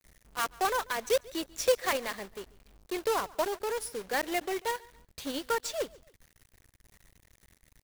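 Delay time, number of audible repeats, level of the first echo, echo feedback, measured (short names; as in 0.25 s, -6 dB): 0.141 s, 2, -23.0 dB, 37%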